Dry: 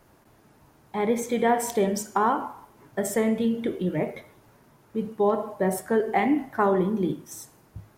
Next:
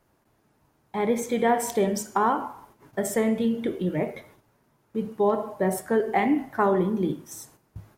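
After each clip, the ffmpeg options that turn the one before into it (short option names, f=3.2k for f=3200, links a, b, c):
-af "agate=range=-9dB:threshold=-53dB:ratio=16:detection=peak"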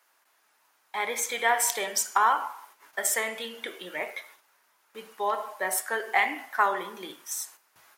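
-af "highpass=1.3k,volume=7.5dB"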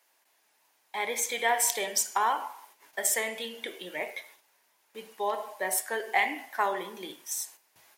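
-af "equalizer=f=1.3k:w=2.4:g=-10"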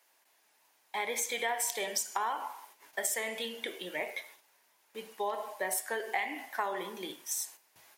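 -af "acompressor=threshold=-30dB:ratio=4"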